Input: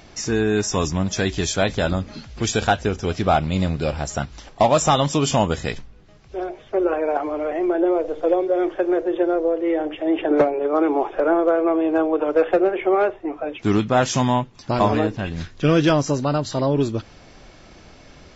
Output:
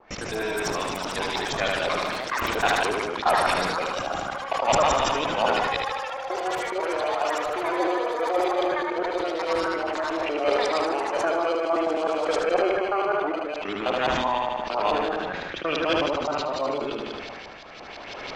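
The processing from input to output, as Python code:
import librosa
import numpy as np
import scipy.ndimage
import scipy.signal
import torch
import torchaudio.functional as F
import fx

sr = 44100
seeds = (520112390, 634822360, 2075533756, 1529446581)

p1 = fx.local_reverse(x, sr, ms=105.0)
p2 = fx.recorder_agc(p1, sr, target_db=-14.5, rise_db_per_s=14.0, max_gain_db=30)
p3 = scipy.signal.sosfilt(scipy.signal.butter(2, 530.0, 'highpass', fs=sr, output='sos'), p2)
p4 = fx.high_shelf(p3, sr, hz=4500.0, db=9.0)
p5 = fx.sample_hold(p4, sr, seeds[0], rate_hz=1800.0, jitter_pct=0)
p6 = p4 + F.gain(torch.from_numpy(p5), -6.5).numpy()
p7 = fx.filter_lfo_lowpass(p6, sr, shape='saw_up', hz=5.9, low_hz=850.0, high_hz=4300.0, q=2.0)
p8 = fx.echo_pitch(p7, sr, ms=142, semitones=7, count=2, db_per_echo=-6.0)
p9 = p8 + fx.echo_feedback(p8, sr, ms=76, feedback_pct=54, wet_db=-6, dry=0)
p10 = fx.sustainer(p9, sr, db_per_s=21.0)
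y = F.gain(torch.from_numpy(p10), -8.0).numpy()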